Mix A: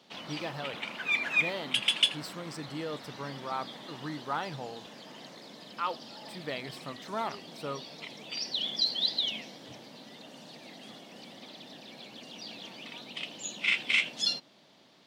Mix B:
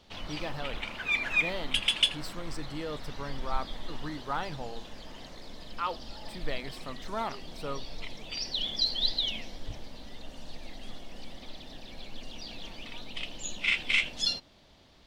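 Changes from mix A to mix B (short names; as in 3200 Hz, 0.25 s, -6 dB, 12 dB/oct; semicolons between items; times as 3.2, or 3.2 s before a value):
background: remove HPF 150 Hz 24 dB/oct; master: remove HPF 68 Hz 24 dB/oct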